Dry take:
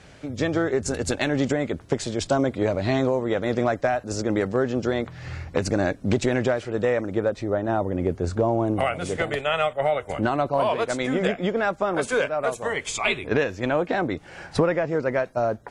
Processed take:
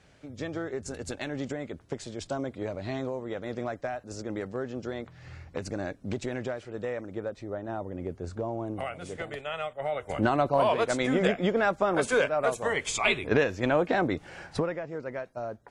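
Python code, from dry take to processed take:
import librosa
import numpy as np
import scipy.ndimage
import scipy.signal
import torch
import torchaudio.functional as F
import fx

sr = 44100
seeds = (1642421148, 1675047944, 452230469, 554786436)

y = fx.gain(x, sr, db=fx.line((9.78, -11.0), (10.22, -1.5), (14.27, -1.5), (14.82, -12.0)))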